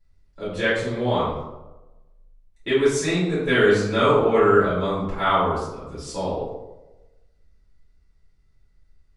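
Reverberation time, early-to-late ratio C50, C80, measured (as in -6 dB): 1.0 s, 1.0 dB, 4.0 dB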